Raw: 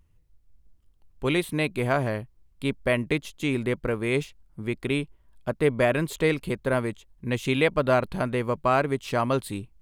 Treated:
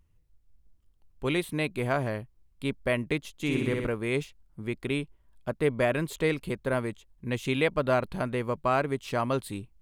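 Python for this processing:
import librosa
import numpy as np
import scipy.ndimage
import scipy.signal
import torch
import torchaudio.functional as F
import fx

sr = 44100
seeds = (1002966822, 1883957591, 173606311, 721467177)

y = fx.room_flutter(x, sr, wall_m=10.4, rt60_s=1.1, at=(3.33, 3.87))
y = y * 10.0 ** (-3.5 / 20.0)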